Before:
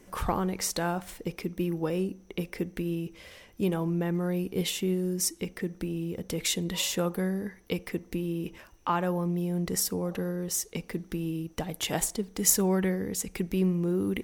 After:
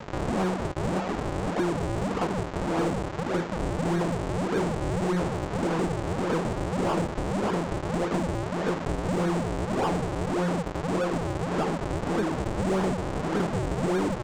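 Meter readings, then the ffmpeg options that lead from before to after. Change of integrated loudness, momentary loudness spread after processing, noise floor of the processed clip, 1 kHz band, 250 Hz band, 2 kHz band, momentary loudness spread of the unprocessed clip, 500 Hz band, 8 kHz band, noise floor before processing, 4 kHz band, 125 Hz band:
+2.0 dB, 3 LU, -34 dBFS, +7.0 dB, +2.0 dB, +4.5 dB, 9 LU, +4.5 dB, -12.5 dB, -56 dBFS, -5.0 dB, +3.0 dB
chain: -filter_complex "[0:a]asplit=2[a][b];[b]adelay=964,lowpass=f=3.1k:p=1,volume=-4.5dB,asplit=2[c][d];[d]adelay=964,lowpass=f=3.1k:p=1,volume=0.46,asplit=2[e][f];[f]adelay=964,lowpass=f=3.1k:p=1,volume=0.46,asplit=2[g][h];[h]adelay=964,lowpass=f=3.1k:p=1,volume=0.46,asplit=2[i][j];[j]adelay=964,lowpass=f=3.1k:p=1,volume=0.46,asplit=2[k][l];[l]adelay=964,lowpass=f=3.1k:p=1,volume=0.46[m];[a][c][e][g][i][k][m]amix=inputs=7:normalize=0,aresample=16000,acrusher=samples=40:mix=1:aa=0.000001:lfo=1:lforange=64:lforate=1.7,aresample=44100,asplit=2[n][o];[o]highpass=f=720:p=1,volume=32dB,asoftclip=type=tanh:threshold=-14dB[p];[n][p]amix=inputs=2:normalize=0,lowpass=f=1.3k:p=1,volume=-6dB,acompressor=threshold=-31dB:ratio=3,volume=5dB"

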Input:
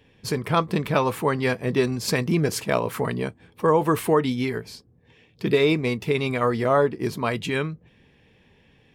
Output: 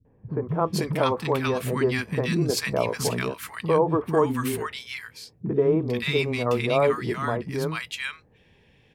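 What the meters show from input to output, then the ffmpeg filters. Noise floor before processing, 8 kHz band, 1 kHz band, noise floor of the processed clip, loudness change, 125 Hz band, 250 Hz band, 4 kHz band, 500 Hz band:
-59 dBFS, 0.0 dB, -2.5 dB, -60 dBFS, -1.5 dB, -1.0 dB, -2.0 dB, 0.0 dB, -1.0 dB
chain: -filter_complex "[0:a]acrossover=split=240|1200[a][b][c];[b]adelay=50[d];[c]adelay=490[e];[a][d][e]amix=inputs=3:normalize=0"

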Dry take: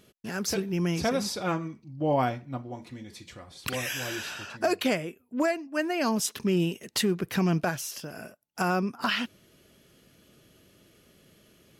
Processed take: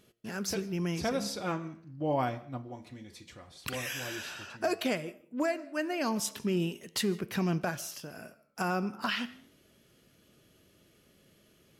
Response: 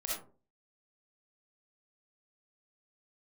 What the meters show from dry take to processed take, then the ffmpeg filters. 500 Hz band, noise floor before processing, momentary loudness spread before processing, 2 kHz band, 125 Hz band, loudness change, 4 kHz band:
-4.5 dB, -61 dBFS, 15 LU, -4.5 dB, -5.0 dB, -4.5 dB, -4.5 dB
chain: -filter_complex "[0:a]flanger=delay=8.4:depth=6.3:regen=89:speed=0.4:shape=sinusoidal,asplit=2[a][b];[1:a]atrim=start_sample=2205,adelay=88[c];[b][c]afir=irnorm=-1:irlink=0,volume=-24dB[d];[a][d]amix=inputs=2:normalize=0"

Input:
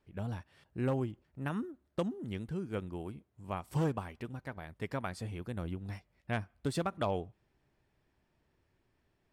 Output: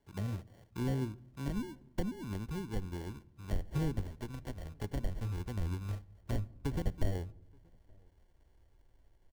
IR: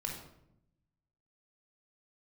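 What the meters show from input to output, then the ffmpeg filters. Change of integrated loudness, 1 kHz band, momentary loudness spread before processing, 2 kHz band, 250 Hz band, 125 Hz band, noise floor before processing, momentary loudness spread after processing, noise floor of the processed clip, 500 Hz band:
-1.0 dB, -8.0 dB, 12 LU, -6.0 dB, -1.5 dB, +1.5 dB, -77 dBFS, 9 LU, -66 dBFS, -5.5 dB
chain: -filter_complex "[0:a]acrusher=samples=35:mix=1:aa=0.000001,acrossover=split=370[a][b];[b]acompressor=threshold=-51dB:ratio=3[c];[a][c]amix=inputs=2:normalize=0,asubboost=boost=7.5:cutoff=55,asplit=2[d][e];[e]adelay=874.6,volume=-30dB,highshelf=f=4k:g=-19.7[f];[d][f]amix=inputs=2:normalize=0,asplit=2[g][h];[1:a]atrim=start_sample=2205[i];[h][i]afir=irnorm=-1:irlink=0,volume=-18.5dB[j];[g][j]amix=inputs=2:normalize=0,volume=1.5dB"

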